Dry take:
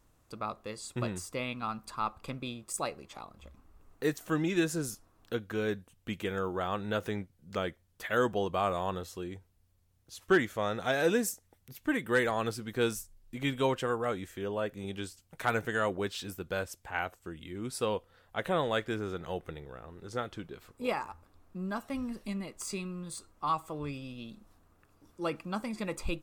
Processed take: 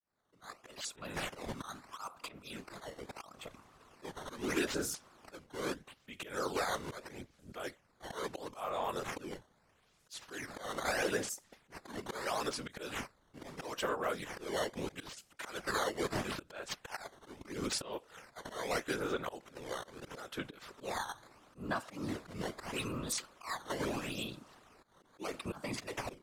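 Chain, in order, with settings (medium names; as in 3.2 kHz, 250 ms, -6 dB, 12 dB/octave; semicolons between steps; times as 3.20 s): fade-in on the opening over 1.94 s; de-esser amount 70%; in parallel at -8 dB: saturation -29.5 dBFS, distortion -9 dB; on the sum: high-pass 620 Hz 6 dB/octave; decimation with a swept rate 10×, swing 160% 0.77 Hz; compression 4:1, threshold -41 dBFS, peak gain reduction 15.5 dB; low-pass 11 kHz 12 dB/octave; slow attack 199 ms; whisper effect; trim +8.5 dB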